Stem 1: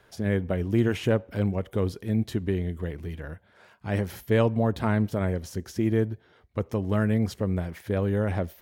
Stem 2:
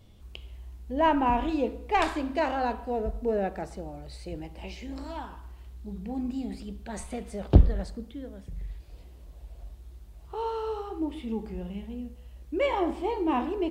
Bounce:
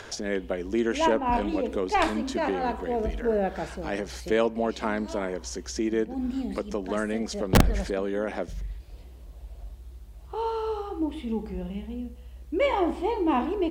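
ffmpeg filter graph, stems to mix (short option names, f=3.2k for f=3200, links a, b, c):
-filter_complex "[0:a]highpass=f=240:w=0.5412,highpass=f=240:w=1.3066,acompressor=mode=upward:threshold=-32dB:ratio=2.5,lowpass=f=6.6k:t=q:w=2.4,volume=0dB,asplit=2[a][b];[1:a]volume=2.5dB[c];[b]apad=whole_len=604413[d];[c][d]sidechaincompress=threshold=-34dB:ratio=4:attack=46:release=218[e];[a][e]amix=inputs=2:normalize=0,aeval=exprs='(mod(2.66*val(0)+1,2)-1)/2.66':c=same"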